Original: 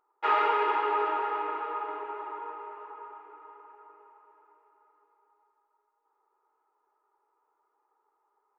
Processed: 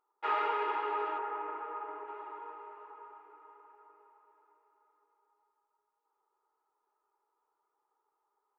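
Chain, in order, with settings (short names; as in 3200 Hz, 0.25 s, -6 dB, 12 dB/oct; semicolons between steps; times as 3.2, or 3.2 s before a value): 1.18–2.08 LPF 2200 Hz 12 dB/oct; gain -6.5 dB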